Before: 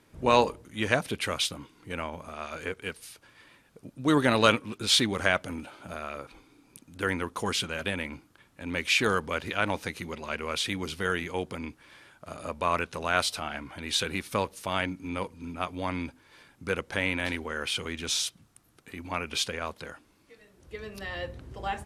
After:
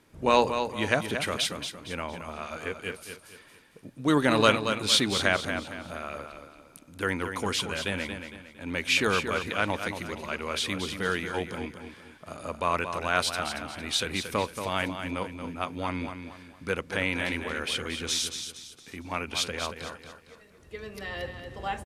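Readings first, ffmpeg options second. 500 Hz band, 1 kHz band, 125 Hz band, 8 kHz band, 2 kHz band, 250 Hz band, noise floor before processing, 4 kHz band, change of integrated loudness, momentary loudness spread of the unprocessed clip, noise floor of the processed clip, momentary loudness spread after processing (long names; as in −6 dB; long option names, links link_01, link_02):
+1.0 dB, +0.5 dB, 0.0 dB, +0.5 dB, +0.5 dB, +0.5 dB, −63 dBFS, +0.5 dB, +0.5 dB, 17 LU, −55 dBFS, 18 LU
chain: -af "bandreject=frequency=60:width_type=h:width=6,bandreject=frequency=120:width_type=h:width=6,aecho=1:1:229|458|687|916:0.398|0.147|0.0545|0.0202"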